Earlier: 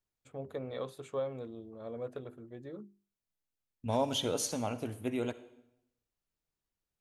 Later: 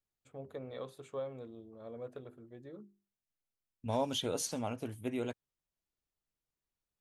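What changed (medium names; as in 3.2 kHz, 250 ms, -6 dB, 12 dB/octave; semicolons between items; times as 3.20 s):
first voice -4.5 dB; reverb: off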